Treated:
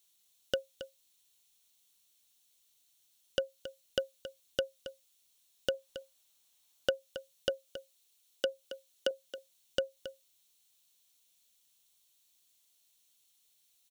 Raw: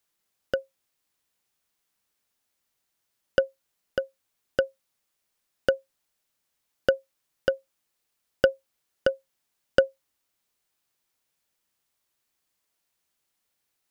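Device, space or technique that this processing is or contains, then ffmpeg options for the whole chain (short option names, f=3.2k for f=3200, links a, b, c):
over-bright horn tweeter: -filter_complex "[0:a]highshelf=f=2.5k:t=q:w=1.5:g=12,alimiter=limit=-9.5dB:level=0:latency=1:release=212,bandreject=f=4.9k:w=6.3,asettb=1/sr,asplit=3[a][b][c];[a]atrim=end=5.744[d];[b]atrim=start=5.74:end=6.9,asetpts=PTS-STARTPTS,afade=t=in:d=0.004:c=qsin,afade=t=out:st=1.156:d=0.004:c=qsin,equalizer=f=980:w=0.86:g=6[e];[c]atrim=start=6.896[f];[d][e]acrossfade=d=0.004:c1=hsin:c2=qsin[g];[g][f]acrossfade=d=0.004:c1=qsin:c2=hsin,asettb=1/sr,asplit=3[h][i][j];[h]atrim=end=7.494[k];[i]atrim=start=7.49:end=9.11,asetpts=PTS-STARTPTS,afade=t=in:d=0.004:c=qsin,afade=t=out:st=1.616:d=0.004:c=qsin,highpass=f=230:w=0.5412,highpass=f=230:w=1.3066[l];[j]atrim=start=9.106[m];[k][l]acrossfade=d=0.004:c1=hsin:c2=qsin[n];[n][m]acrossfade=d=0.004:c1=qsin:c2=hsin,aecho=1:1:273:0.237,volume=-4dB"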